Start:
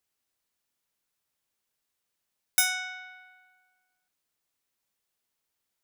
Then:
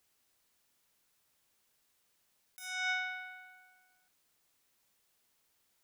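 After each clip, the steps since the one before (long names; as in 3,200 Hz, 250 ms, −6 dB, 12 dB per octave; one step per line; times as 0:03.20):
compressor whose output falls as the input rises −39 dBFS, ratio −1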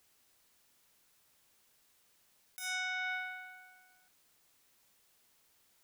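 brickwall limiter −34.5 dBFS, peak gain reduction 10.5 dB
level +5 dB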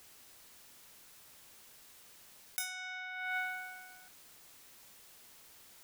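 compressor whose output falls as the input rises −46 dBFS, ratio −1
level +6 dB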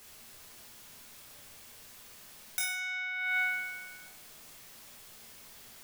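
rectangular room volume 240 cubic metres, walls mixed, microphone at 1.3 metres
level +2.5 dB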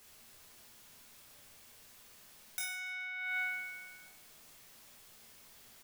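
repeating echo 141 ms, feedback 46%, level −22.5 dB
level −6 dB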